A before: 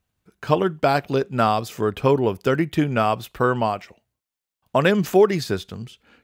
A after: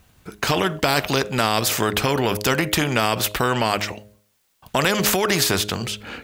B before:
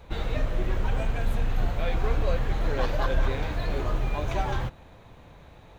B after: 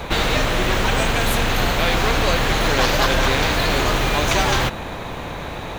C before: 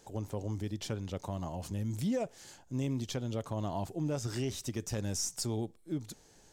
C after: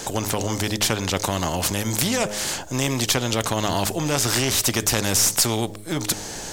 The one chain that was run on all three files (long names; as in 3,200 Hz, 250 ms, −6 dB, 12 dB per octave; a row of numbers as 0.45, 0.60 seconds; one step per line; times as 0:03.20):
hum removal 104.2 Hz, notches 6
brickwall limiter −14 dBFS
every bin compressed towards the loudest bin 2 to 1
normalise the peak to −3 dBFS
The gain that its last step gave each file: +11.0, +11.0, +19.5 decibels